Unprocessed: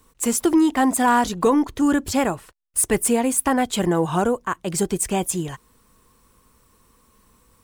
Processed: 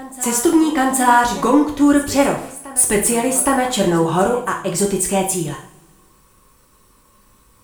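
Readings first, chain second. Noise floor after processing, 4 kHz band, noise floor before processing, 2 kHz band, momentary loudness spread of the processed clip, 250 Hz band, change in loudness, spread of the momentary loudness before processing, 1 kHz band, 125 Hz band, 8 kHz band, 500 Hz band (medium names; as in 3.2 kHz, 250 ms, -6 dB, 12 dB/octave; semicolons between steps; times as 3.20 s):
-54 dBFS, +5.0 dB, -60 dBFS, +5.0 dB, 7 LU, +3.5 dB, +4.5 dB, 8 LU, +5.0 dB, +3.5 dB, +5.5 dB, +4.5 dB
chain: reverse echo 816 ms -17.5 dB; two-slope reverb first 0.46 s, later 1.7 s, from -22 dB, DRR 0 dB; trim +2 dB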